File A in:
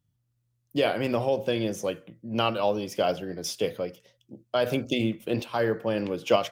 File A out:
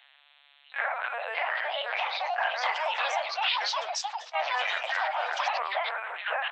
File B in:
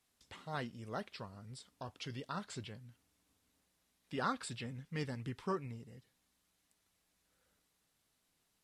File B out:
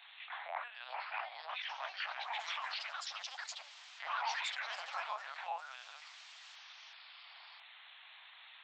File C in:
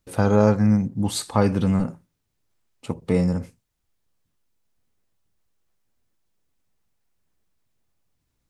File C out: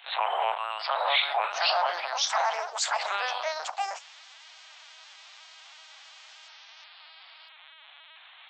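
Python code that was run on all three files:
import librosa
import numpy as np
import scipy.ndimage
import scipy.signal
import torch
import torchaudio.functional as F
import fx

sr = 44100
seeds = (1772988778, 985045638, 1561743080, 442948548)

y = fx.partial_stretch(x, sr, pct=77)
y = fx.lpc_vocoder(y, sr, seeds[0], excitation='pitch_kept', order=8)
y = fx.echo_pitch(y, sr, ms=746, semitones=4, count=3, db_per_echo=-3.0)
y = scipy.signal.sosfilt(scipy.signal.butter(8, 690.0, 'highpass', fs=sr, output='sos'), y)
y = fx.high_shelf(y, sr, hz=2200.0, db=8.5)
y = fx.env_flatten(y, sr, amount_pct=50)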